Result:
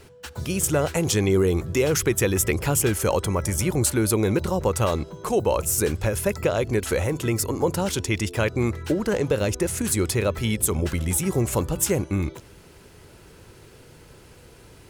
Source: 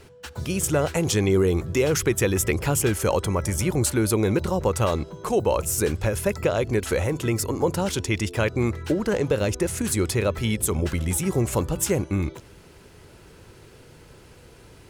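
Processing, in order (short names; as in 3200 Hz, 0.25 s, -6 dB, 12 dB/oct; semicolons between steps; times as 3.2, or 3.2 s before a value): high shelf 9000 Hz +4.5 dB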